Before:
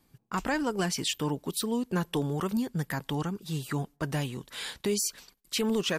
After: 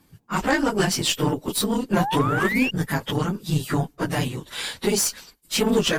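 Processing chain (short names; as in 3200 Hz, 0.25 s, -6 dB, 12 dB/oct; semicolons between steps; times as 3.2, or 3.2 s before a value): phase scrambler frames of 50 ms; painted sound rise, 1.96–2.71, 660–2900 Hz -34 dBFS; added harmonics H 2 -17 dB, 4 -23 dB, 6 -18 dB, 8 -34 dB, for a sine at -15 dBFS; gain +7.5 dB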